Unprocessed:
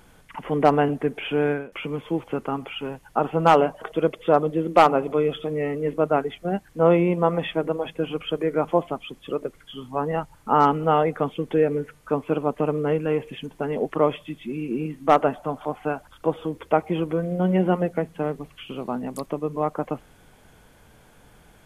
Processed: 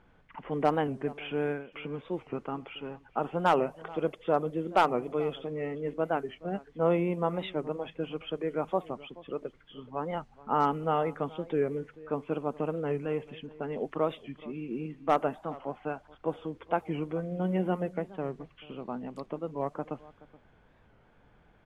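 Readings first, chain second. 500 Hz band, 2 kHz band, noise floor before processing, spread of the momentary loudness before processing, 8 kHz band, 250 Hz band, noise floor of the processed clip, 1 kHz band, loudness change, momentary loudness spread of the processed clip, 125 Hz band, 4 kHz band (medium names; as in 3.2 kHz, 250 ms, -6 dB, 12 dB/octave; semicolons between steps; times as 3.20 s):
-8.5 dB, -7.5 dB, -54 dBFS, 12 LU, no reading, -8.5 dB, -62 dBFS, -8.5 dB, -8.5 dB, 12 LU, -8.5 dB, -8.5 dB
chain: level-controlled noise filter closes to 2.4 kHz, open at -16 dBFS; echo from a far wall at 73 m, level -20 dB; warped record 45 rpm, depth 160 cents; trim -8.5 dB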